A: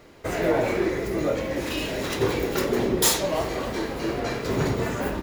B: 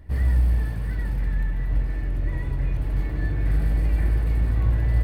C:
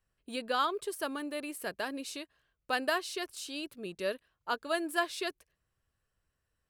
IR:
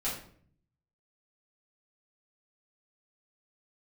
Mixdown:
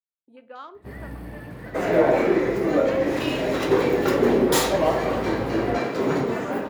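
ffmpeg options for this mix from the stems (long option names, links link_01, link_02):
-filter_complex "[0:a]adelay=1500,volume=-0.5dB,asplit=2[link_01][link_02];[link_02]volume=-10.5dB[link_03];[1:a]highshelf=frequency=12000:gain=11.5,adelay=750,volume=-1dB[link_04];[2:a]afwtdn=0.00891,volume=-10dB,asplit=2[link_05][link_06];[link_06]volume=-16dB[link_07];[3:a]atrim=start_sample=2205[link_08];[link_03][link_07]amix=inputs=2:normalize=0[link_09];[link_09][link_08]afir=irnorm=-1:irlink=0[link_10];[link_01][link_04][link_05][link_10]amix=inputs=4:normalize=0,highpass=210,highshelf=frequency=2900:gain=-12,dynaudnorm=framelen=590:gausssize=5:maxgain=4.5dB"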